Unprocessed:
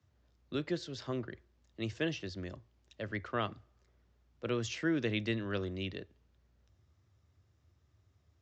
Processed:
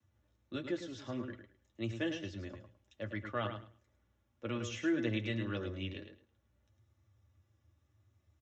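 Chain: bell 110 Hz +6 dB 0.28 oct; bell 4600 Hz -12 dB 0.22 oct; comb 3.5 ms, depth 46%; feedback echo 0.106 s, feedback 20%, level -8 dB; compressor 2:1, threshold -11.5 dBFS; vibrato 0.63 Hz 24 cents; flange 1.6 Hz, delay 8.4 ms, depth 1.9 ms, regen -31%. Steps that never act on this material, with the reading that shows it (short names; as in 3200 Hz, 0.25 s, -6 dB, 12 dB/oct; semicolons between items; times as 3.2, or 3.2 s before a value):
compressor, threshold -11.5 dBFS: input peak -19.0 dBFS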